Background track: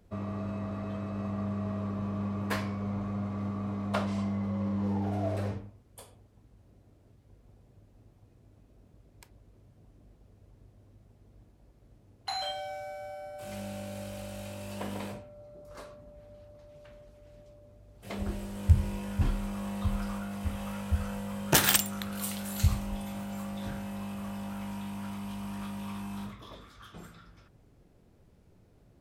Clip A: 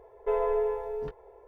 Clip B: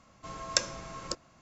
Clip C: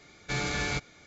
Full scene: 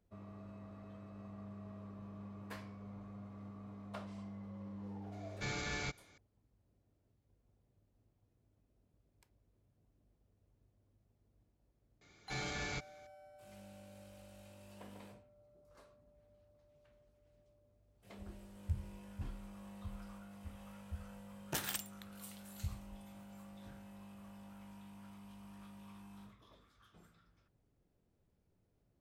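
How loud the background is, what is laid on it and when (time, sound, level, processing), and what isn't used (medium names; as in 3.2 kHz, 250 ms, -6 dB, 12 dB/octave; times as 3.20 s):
background track -16.5 dB
5.12 s: add C -9.5 dB
12.01 s: add C -10.5 dB
not used: A, B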